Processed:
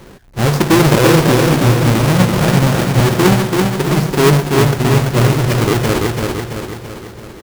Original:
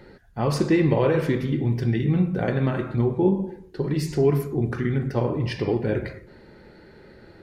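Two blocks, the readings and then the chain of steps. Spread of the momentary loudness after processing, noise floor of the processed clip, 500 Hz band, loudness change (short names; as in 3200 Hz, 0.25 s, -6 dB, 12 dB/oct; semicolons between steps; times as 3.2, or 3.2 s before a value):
14 LU, -37 dBFS, +9.0 dB, +10.5 dB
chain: half-waves squared off; feedback echo 0.335 s, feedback 53%, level -3.5 dB; gain +4.5 dB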